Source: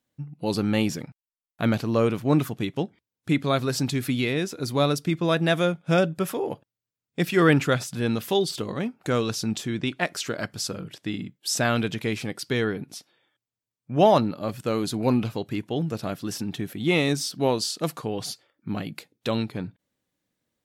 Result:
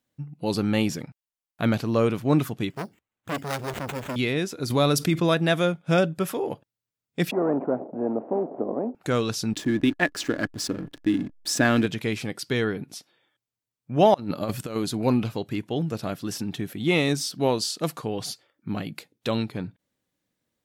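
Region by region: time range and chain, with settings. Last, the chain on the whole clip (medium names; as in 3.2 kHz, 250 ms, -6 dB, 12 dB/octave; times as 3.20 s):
2.70–4.16 s: sample-rate reducer 5 kHz + transformer saturation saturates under 1.6 kHz
4.70–5.34 s: treble shelf 9.8 kHz +5.5 dB + level flattener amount 50%
7.31–8.95 s: CVSD coder 16 kbps + Chebyshev band-pass 240–670 Hz, order 3 + spectrum-flattening compressor 2:1
9.53–11.86 s: hysteresis with a dead band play -34 dBFS + small resonant body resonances 290/1700 Hz, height 13 dB
14.14–14.76 s: treble shelf 7.2 kHz +4.5 dB + compressor with a negative ratio -29 dBFS, ratio -0.5
whole clip: none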